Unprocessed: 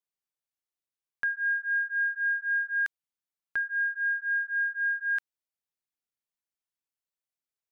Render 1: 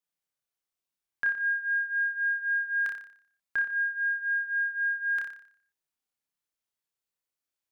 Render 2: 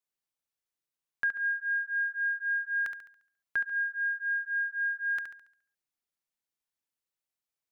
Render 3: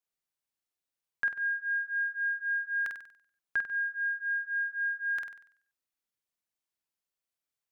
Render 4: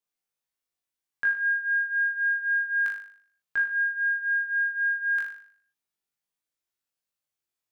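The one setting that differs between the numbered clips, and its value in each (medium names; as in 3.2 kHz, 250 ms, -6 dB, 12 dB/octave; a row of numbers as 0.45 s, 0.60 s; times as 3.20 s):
flutter echo, walls apart: 5.1 m, 12 m, 8.2 m, 3.4 m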